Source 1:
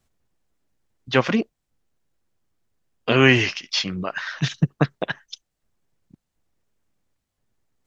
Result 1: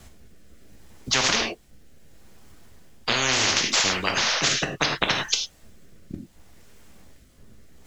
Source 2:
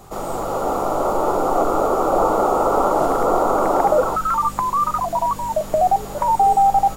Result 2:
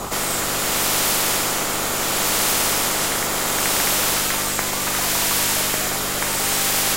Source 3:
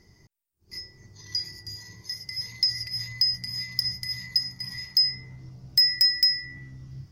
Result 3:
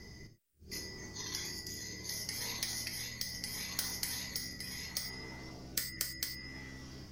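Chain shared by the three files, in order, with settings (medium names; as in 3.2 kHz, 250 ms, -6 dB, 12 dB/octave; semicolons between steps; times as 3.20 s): gated-style reverb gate 130 ms falling, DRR 4 dB; rotary cabinet horn 0.7 Hz; spectrum-flattening compressor 10:1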